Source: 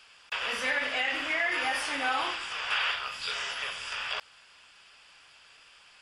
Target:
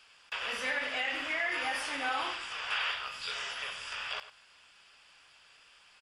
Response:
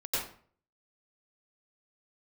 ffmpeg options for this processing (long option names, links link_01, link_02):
-filter_complex "[0:a]asplit=2[link_01][link_02];[link_02]adelay=99.13,volume=-14dB,highshelf=frequency=4000:gain=-2.23[link_03];[link_01][link_03]amix=inputs=2:normalize=0,volume=-4dB"